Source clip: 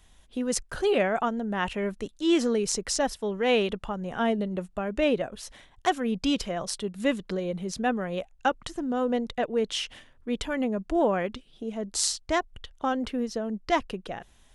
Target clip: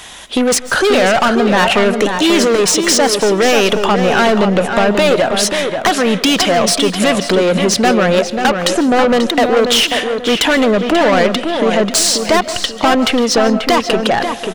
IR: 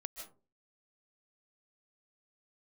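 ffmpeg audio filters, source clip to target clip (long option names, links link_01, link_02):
-filter_complex "[0:a]alimiter=limit=-17dB:level=0:latency=1:release=431,asplit=2[link_01][link_02];[link_02]highpass=frequency=720:poles=1,volume=35dB,asoftclip=type=tanh:threshold=-3.5dB[link_03];[link_01][link_03]amix=inputs=2:normalize=0,lowpass=frequency=7600:poles=1,volume=-6dB,acompressor=threshold=-13dB:ratio=6,asplit=2[link_04][link_05];[link_05]adelay=537,lowpass=frequency=3200:poles=1,volume=-6dB,asplit=2[link_06][link_07];[link_07]adelay=537,lowpass=frequency=3200:poles=1,volume=0.32,asplit=2[link_08][link_09];[link_09]adelay=537,lowpass=frequency=3200:poles=1,volume=0.32,asplit=2[link_10][link_11];[link_11]adelay=537,lowpass=frequency=3200:poles=1,volume=0.32[link_12];[link_04][link_06][link_08][link_10][link_12]amix=inputs=5:normalize=0,asplit=2[link_13][link_14];[1:a]atrim=start_sample=2205[link_15];[link_14][link_15]afir=irnorm=-1:irlink=0,volume=-4.5dB[link_16];[link_13][link_16]amix=inputs=2:normalize=0"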